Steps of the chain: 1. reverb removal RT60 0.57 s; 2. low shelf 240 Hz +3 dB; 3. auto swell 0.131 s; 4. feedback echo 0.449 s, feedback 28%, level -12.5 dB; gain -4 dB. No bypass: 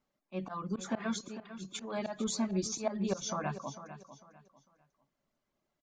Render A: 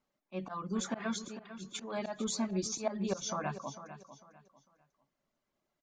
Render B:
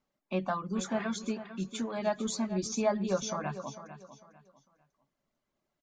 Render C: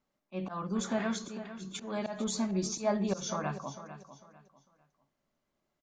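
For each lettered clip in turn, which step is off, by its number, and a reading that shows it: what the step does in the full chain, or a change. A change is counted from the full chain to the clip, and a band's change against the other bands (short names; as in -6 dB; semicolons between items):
2, 125 Hz band -2.0 dB; 3, 500 Hz band +3.0 dB; 1, crest factor change -2.5 dB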